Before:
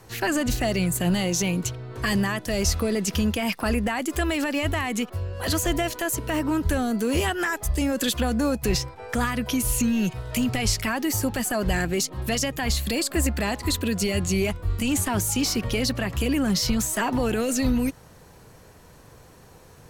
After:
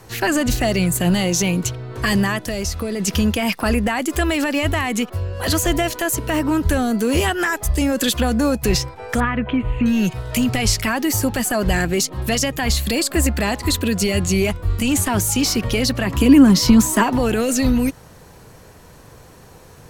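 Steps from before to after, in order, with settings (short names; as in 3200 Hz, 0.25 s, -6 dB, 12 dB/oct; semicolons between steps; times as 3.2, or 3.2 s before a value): 2.37–3 compressor 3:1, threshold -28 dBFS, peak gain reduction 8 dB; 9.2–9.86 inverse Chebyshev low-pass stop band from 5200 Hz, stop band 40 dB; 16.06–17.02 small resonant body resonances 270/990 Hz, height 9 dB -> 13 dB, ringing for 25 ms; gain +5.5 dB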